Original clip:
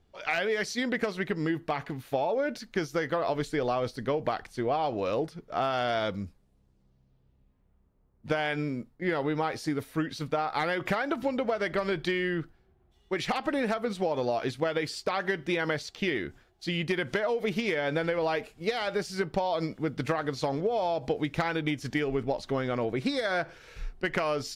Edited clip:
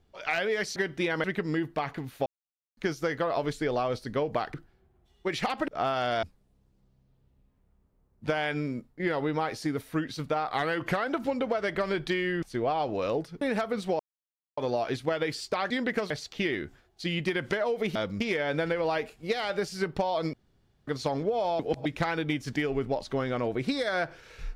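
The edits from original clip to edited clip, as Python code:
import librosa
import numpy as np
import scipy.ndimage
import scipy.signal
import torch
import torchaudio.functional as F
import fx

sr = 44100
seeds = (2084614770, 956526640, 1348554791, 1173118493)

y = fx.edit(x, sr, fx.swap(start_s=0.76, length_s=0.4, other_s=15.25, other_length_s=0.48),
    fx.silence(start_s=2.18, length_s=0.51),
    fx.swap(start_s=4.46, length_s=0.99, other_s=12.4, other_length_s=1.14),
    fx.move(start_s=6.0, length_s=0.25, to_s=17.58),
    fx.speed_span(start_s=10.49, length_s=0.58, speed=0.93),
    fx.insert_silence(at_s=14.12, length_s=0.58),
    fx.room_tone_fill(start_s=19.71, length_s=0.54),
    fx.reverse_span(start_s=20.97, length_s=0.26), tone=tone)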